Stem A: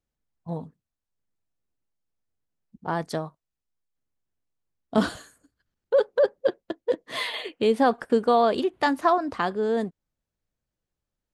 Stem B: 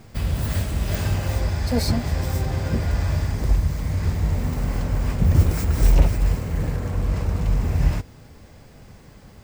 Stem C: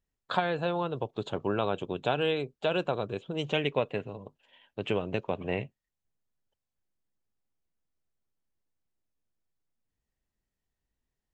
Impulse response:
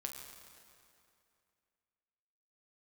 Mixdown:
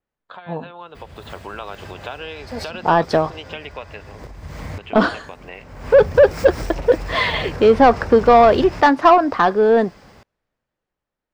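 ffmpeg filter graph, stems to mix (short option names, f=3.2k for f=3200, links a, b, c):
-filter_complex "[0:a]aemphasis=mode=reproduction:type=75kf,volume=1dB[a];[1:a]acompressor=threshold=-20dB:ratio=6,adelay=800,volume=-8dB[b];[2:a]acrossover=split=980|3400[c][d][e];[c]acompressor=threshold=-40dB:ratio=4[f];[d]acompressor=threshold=-39dB:ratio=4[g];[e]acompressor=threshold=-53dB:ratio=4[h];[f][g][h]amix=inputs=3:normalize=0,volume=-9dB,asplit=2[i][j];[j]apad=whole_len=451146[k];[b][k]sidechaincompress=threshold=-57dB:ratio=16:attack=7.2:release=326[l];[a][l][i]amix=inputs=3:normalize=0,dynaudnorm=f=180:g=11:m=10dB,asplit=2[m][n];[n]highpass=f=720:p=1,volume=14dB,asoftclip=type=tanh:threshold=-1.5dB[o];[m][o]amix=inputs=2:normalize=0,lowpass=f=2.1k:p=1,volume=-6dB,adynamicequalizer=threshold=0.00398:dfrequency=5200:dqfactor=3.1:tfrequency=5200:tqfactor=3.1:attack=5:release=100:ratio=0.375:range=3.5:mode=boostabove:tftype=bell"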